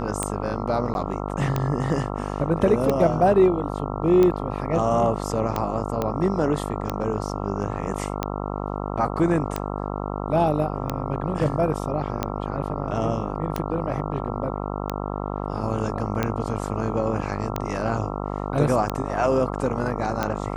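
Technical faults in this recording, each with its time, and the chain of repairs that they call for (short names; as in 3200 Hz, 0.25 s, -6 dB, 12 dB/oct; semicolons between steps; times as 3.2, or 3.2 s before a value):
buzz 50 Hz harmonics 27 -29 dBFS
tick 45 rpm -10 dBFS
0.94–0.95 gap 11 ms
6.02 pop -12 dBFS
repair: de-click; de-hum 50 Hz, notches 27; interpolate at 0.94, 11 ms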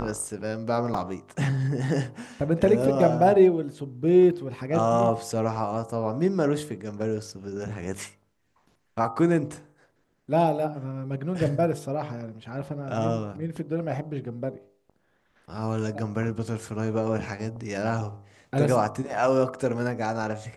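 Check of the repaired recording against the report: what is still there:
none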